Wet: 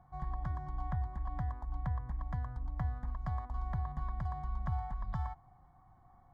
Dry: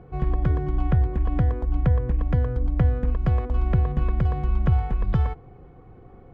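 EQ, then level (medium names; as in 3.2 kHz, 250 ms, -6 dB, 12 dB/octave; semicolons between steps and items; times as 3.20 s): resonant low shelf 560 Hz -9 dB, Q 1.5; peaking EQ 1.4 kHz -9.5 dB 0.26 oct; static phaser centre 1.1 kHz, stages 4; -6.0 dB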